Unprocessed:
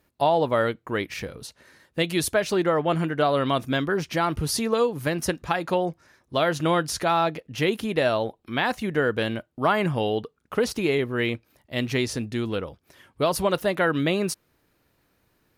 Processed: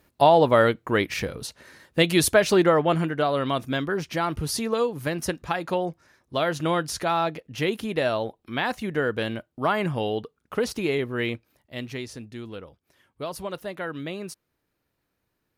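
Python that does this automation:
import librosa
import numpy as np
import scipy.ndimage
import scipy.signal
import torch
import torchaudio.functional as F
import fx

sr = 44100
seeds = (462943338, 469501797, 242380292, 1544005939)

y = fx.gain(x, sr, db=fx.line((2.59, 4.5), (3.26, -2.0), (11.31, -2.0), (12.05, -10.0)))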